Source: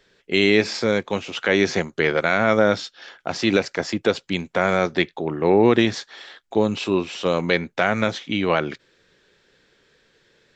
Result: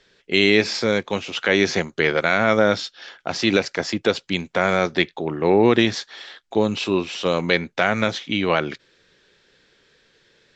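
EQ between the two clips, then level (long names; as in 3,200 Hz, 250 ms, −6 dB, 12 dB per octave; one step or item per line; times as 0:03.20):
high-frequency loss of the air 91 metres
high-shelf EQ 3,700 Hz +11 dB
0.0 dB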